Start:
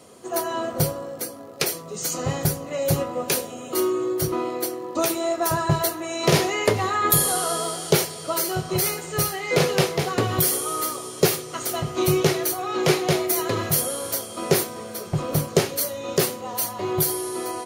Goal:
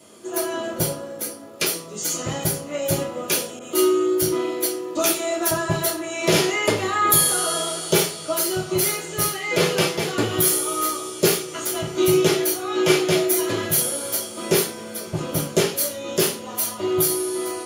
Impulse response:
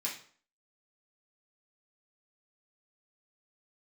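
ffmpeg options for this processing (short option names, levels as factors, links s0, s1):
-filter_complex "[1:a]atrim=start_sample=2205,asetrate=61740,aresample=44100[s0];[0:a][s0]afir=irnorm=-1:irlink=0,asettb=1/sr,asplit=3[s1][s2][s3];[s1]atrim=end=3.594[s4];[s2]atrim=start=3.59:end=5.51,asetpts=PTS-STARTPTS,afade=t=in:d=0.004:c=qsin,afade=t=out:st=1.916:d=0.004:c=qsin,adynamicequalizer=threshold=0.00794:dfrequency=1800:dqfactor=0.7:tfrequency=1800:tqfactor=0.7:attack=5:release=100:ratio=0.375:range=1.5:mode=boostabove:tftype=highshelf[s5];[s3]atrim=start=5.506[s6];[s4][s5]acrossfade=d=0.004:c1=hsin:c2=qsin[s7];[s7][s6]acrossfade=d=0.004:c1=qsin:c2=hsin,volume=1.41"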